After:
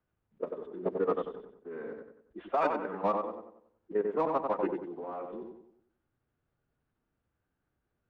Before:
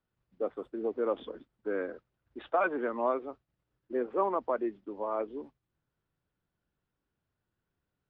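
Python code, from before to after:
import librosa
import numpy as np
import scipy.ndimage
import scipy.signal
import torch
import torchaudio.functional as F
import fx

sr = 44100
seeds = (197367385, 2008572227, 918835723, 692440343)

p1 = 10.0 ** (-29.0 / 20.0) * np.tanh(x / 10.0 ** (-29.0 / 20.0))
p2 = x + (p1 * librosa.db_to_amplitude(-7.5))
p3 = fx.dynamic_eq(p2, sr, hz=610.0, q=3.2, threshold_db=-39.0, ratio=4.0, max_db=-3)
p4 = fx.level_steps(p3, sr, step_db=14)
p5 = fx.env_lowpass(p4, sr, base_hz=2600.0, full_db=-30.5)
p6 = fx.echo_filtered(p5, sr, ms=93, feedback_pct=42, hz=2600.0, wet_db=-4)
p7 = fx.pitch_keep_formants(p6, sr, semitones=-3.5)
y = p7 * librosa.db_to_amplitude(2.0)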